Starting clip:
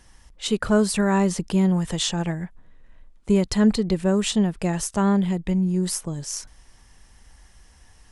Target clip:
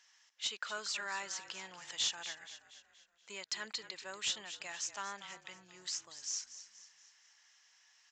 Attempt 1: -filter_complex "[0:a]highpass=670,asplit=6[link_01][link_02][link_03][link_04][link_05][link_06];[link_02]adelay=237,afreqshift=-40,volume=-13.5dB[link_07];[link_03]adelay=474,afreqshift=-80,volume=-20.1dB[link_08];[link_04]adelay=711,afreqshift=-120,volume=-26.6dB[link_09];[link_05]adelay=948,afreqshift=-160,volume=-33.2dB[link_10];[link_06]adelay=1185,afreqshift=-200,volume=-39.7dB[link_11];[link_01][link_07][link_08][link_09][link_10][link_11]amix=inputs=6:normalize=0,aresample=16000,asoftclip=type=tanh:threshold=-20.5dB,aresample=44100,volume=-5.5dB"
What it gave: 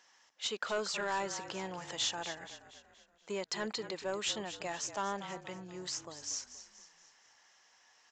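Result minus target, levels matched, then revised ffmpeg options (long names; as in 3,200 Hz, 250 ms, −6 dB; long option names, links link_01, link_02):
500 Hz band +11.5 dB
-filter_complex "[0:a]highpass=1700,asplit=6[link_01][link_02][link_03][link_04][link_05][link_06];[link_02]adelay=237,afreqshift=-40,volume=-13.5dB[link_07];[link_03]adelay=474,afreqshift=-80,volume=-20.1dB[link_08];[link_04]adelay=711,afreqshift=-120,volume=-26.6dB[link_09];[link_05]adelay=948,afreqshift=-160,volume=-33.2dB[link_10];[link_06]adelay=1185,afreqshift=-200,volume=-39.7dB[link_11];[link_01][link_07][link_08][link_09][link_10][link_11]amix=inputs=6:normalize=0,aresample=16000,asoftclip=type=tanh:threshold=-20.5dB,aresample=44100,volume=-5.5dB"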